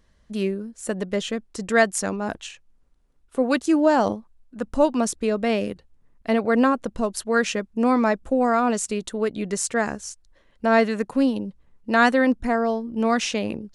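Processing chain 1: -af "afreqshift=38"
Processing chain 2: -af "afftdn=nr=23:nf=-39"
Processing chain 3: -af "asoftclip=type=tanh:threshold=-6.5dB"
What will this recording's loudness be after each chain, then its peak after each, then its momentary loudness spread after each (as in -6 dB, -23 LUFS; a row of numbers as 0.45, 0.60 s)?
-23.0, -23.0, -23.5 LUFS; -3.5, -5.0, -8.0 dBFS; 13, 13, 12 LU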